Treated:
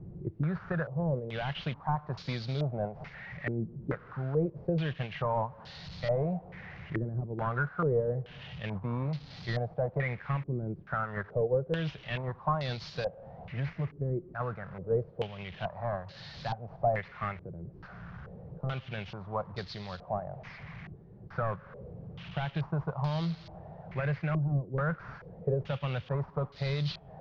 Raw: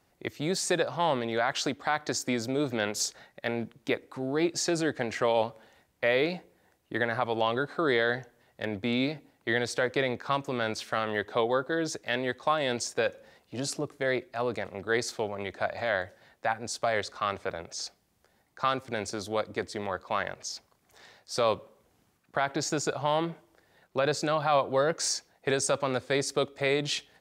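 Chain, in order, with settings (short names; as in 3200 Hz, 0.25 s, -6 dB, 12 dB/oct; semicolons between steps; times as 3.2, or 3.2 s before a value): delta modulation 32 kbps, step -38.5 dBFS; resonant low shelf 210 Hz +9.5 dB, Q 3; compressor 2:1, threshold -34 dBFS, peak gain reduction 10.5 dB; gate -33 dBFS, range -6 dB; stepped low-pass 2.3 Hz 340–4300 Hz; gain -1 dB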